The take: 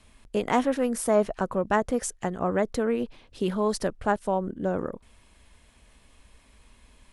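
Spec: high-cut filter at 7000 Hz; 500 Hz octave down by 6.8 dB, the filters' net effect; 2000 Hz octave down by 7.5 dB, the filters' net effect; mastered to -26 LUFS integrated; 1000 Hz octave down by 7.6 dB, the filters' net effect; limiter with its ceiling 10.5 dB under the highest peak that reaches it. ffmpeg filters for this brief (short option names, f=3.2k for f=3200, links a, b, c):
-af "lowpass=7k,equalizer=f=500:t=o:g=-6.5,equalizer=f=1k:t=o:g=-6,equalizer=f=2k:t=o:g=-7,volume=9.5dB,alimiter=limit=-15dB:level=0:latency=1"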